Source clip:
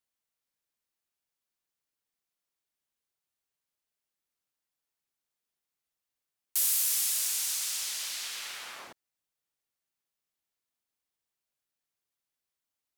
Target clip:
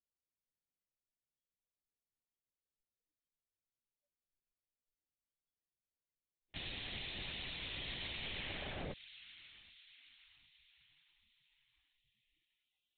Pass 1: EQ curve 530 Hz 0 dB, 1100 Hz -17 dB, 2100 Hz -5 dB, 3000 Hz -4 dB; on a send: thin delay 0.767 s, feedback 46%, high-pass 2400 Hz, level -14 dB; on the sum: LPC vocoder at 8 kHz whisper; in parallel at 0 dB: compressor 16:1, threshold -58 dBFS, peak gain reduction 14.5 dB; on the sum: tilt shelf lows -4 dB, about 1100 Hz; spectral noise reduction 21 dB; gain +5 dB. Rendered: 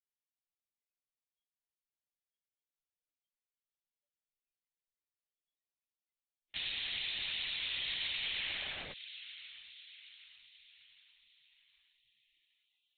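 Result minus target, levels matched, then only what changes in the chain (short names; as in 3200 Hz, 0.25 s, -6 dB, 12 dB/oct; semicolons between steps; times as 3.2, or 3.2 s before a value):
1000 Hz band -8.0 dB
change: tilt shelf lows +6 dB, about 1100 Hz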